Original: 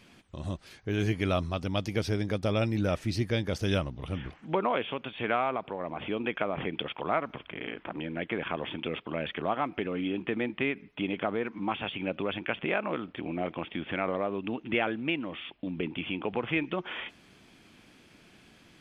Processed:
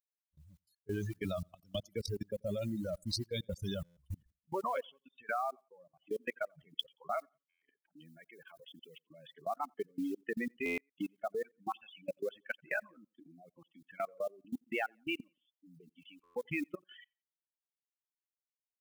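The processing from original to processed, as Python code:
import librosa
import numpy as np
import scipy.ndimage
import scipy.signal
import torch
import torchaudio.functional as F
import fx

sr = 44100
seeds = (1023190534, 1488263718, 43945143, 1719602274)

y = fx.bin_expand(x, sr, power=3.0)
y = fx.mod_noise(y, sr, seeds[0], snr_db=27)
y = fx.level_steps(y, sr, step_db=21)
y = fx.low_shelf(y, sr, hz=98.0, db=-5.5)
y = fx.echo_feedback(y, sr, ms=88, feedback_pct=34, wet_db=-23.0)
y = fx.dereverb_blind(y, sr, rt60_s=1.9)
y = fx.high_shelf(y, sr, hz=7500.0, db=10.5, at=(8.05, 9.04))
y = fx.buffer_glitch(y, sr, at_s=(3.84, 7.49, 10.65, 16.23), block=512, repeats=10)
y = fx.band_squash(y, sr, depth_pct=70, at=(1.24, 1.86))
y = y * 10.0 ** (8.5 / 20.0)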